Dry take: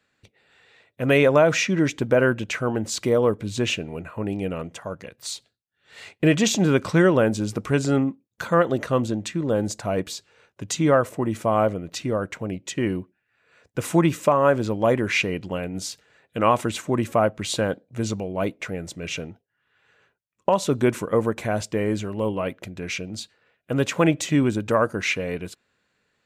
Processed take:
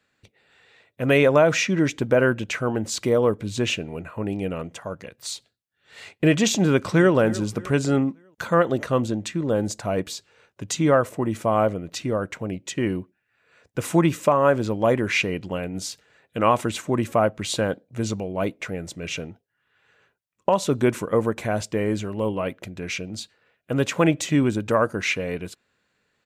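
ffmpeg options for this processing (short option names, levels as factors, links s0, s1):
-filter_complex "[0:a]asplit=2[s0][s1];[s1]afade=t=in:st=6.62:d=0.01,afade=t=out:st=7.14:d=0.01,aecho=0:1:300|600|900|1200:0.133352|0.0600085|0.0270038|0.0121517[s2];[s0][s2]amix=inputs=2:normalize=0"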